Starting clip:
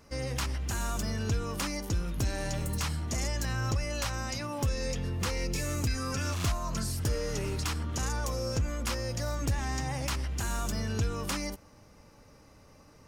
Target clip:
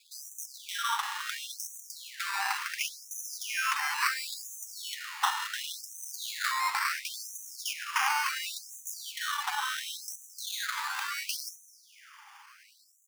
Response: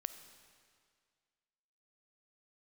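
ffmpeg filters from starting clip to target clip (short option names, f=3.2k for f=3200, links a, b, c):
-filter_complex "[0:a]equalizer=f=190:w=0.76:g=-8,aecho=1:1:211|422|633:0.119|0.0392|0.0129,acrusher=samples=15:mix=1:aa=0.000001:lfo=1:lforange=9:lforate=0.23,asplit=2[a][b];[1:a]atrim=start_sample=2205,highshelf=f=7.6k:g=-8[c];[b][c]afir=irnorm=-1:irlink=0,volume=10.5dB[d];[a][d]amix=inputs=2:normalize=0,afftfilt=real='re*gte(b*sr/1024,730*pow(5900/730,0.5+0.5*sin(2*PI*0.71*pts/sr)))':imag='im*gte(b*sr/1024,730*pow(5900/730,0.5+0.5*sin(2*PI*0.71*pts/sr)))':win_size=1024:overlap=0.75"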